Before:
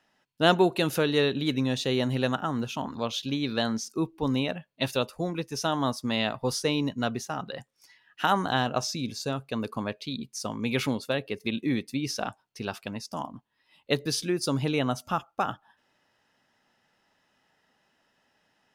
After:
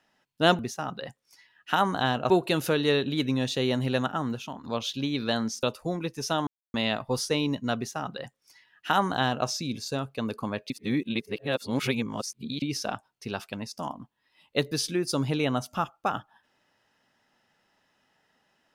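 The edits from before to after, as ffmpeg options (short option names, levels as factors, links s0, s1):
-filter_complex "[0:a]asplit=9[s0][s1][s2][s3][s4][s5][s6][s7][s8];[s0]atrim=end=0.592[s9];[s1]atrim=start=7.098:end=8.812[s10];[s2]atrim=start=0.588:end=2.93,asetpts=PTS-STARTPTS,afade=t=out:st=1.932:d=0.41:silence=0.281838[s11];[s3]atrim=start=2.93:end=3.922,asetpts=PTS-STARTPTS,afade=t=in:d=0.004:c=hsin:silence=0.281838[s12];[s4]atrim=start=4.968:end=5.81,asetpts=PTS-STARTPTS,afade=t=out:st=0.838:d=0.004:c=hsin[s13];[s5]atrim=start=5.81:end=6.08,asetpts=PTS-STARTPTS,volume=0[s14];[s6]atrim=start=6.08:end=10.042,asetpts=PTS-STARTPTS,afade=t=in:d=0.004:c=hsin[s15];[s7]atrim=start=10.038:end=11.962,asetpts=PTS-STARTPTS,areverse[s16];[s8]atrim=start=11.958[s17];[s9][s10]acrossfade=d=0.004:c1=hsin:c2=hsin[s18];[s11][s12]concat=n=2:v=0:a=1[s19];[s18][s19]acrossfade=d=0.004:c1=hsin:c2=hsin[s20];[s13][s14][s15]concat=n=3:v=0:a=1[s21];[s20][s21]acrossfade=d=0.004:c1=hsin:c2=hsin[s22];[s22][s16]acrossfade=d=0.004:c1=hsin:c2=hsin[s23];[s23][s17]acrossfade=d=0.004:c1=hsin:c2=hsin"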